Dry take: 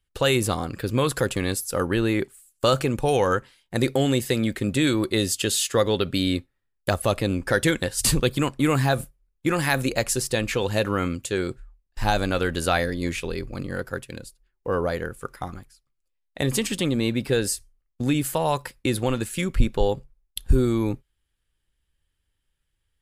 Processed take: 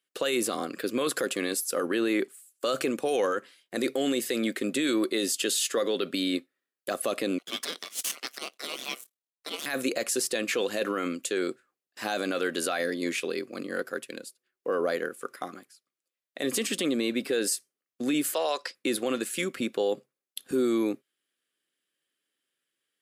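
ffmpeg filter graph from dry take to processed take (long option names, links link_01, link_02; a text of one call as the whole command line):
ffmpeg -i in.wav -filter_complex "[0:a]asettb=1/sr,asplit=3[link_01][link_02][link_03];[link_01]atrim=end=7.384[link_04];[link_02]atrim=start=7.38:end=9.66,asetpts=PTS-STARTPTS,afade=type=in:duration=0.004:curve=qsin,afade=type=out:start_time=2.276:duration=0.004:curve=qsin,aeval=exprs='if(lt(val(0),0),0.251*val(0),val(0))':channel_layout=same,highpass=1100,aeval=exprs='val(0)*sin(2*PI*1700*n/s)':channel_layout=same[link_05];[link_03]atrim=start=9.656[link_06];[link_04][link_05]acrossfade=duration=0.004:curve1=hsin:curve2=qsin[link_07];[link_07][link_06]acrossfade=duration=0.004:curve1=qsin:curve2=hsin,asettb=1/sr,asplit=3[link_08][link_09][link_10];[link_08]atrim=end=18.344[link_11];[link_09]atrim=start=18.34:end=18.75,asetpts=PTS-STARTPTS,afade=type=in:duration=0.004:curve=qsin,afade=type=out:start_time=0.406:duration=0.004:curve=qsin,highpass=450,lowpass=6300,equalizer=frequency=5000:width=2.1:gain=10.5[link_12];[link_10]atrim=start=18.746[link_13];[link_11][link_12]acrossfade=duration=0.004:curve1=hsin:curve2=qsin[link_14];[link_14][link_13]acrossfade=duration=0.004:curve1=qsin:curve2=hsin,highpass=frequency=250:width=0.5412,highpass=frequency=250:width=1.3066,equalizer=frequency=890:width_type=o:width=0.23:gain=-13,alimiter=limit=-18dB:level=0:latency=1:release=16" out.wav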